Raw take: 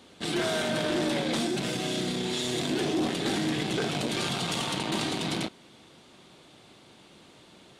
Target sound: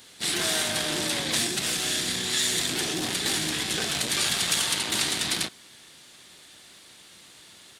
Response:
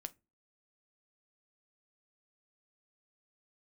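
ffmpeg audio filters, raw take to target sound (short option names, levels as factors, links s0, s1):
-filter_complex "[0:a]crystalizer=i=8:c=0,asplit=3[s0][s1][s2];[s1]asetrate=22050,aresample=44100,atempo=2,volume=0.447[s3];[s2]asetrate=52444,aresample=44100,atempo=0.840896,volume=0.2[s4];[s0][s3][s4]amix=inputs=3:normalize=0,volume=0.447"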